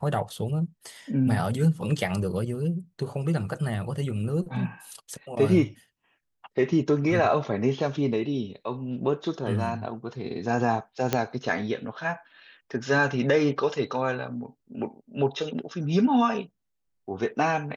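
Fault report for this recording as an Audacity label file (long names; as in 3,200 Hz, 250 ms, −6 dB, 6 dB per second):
11.130000	11.130000	click −8 dBFS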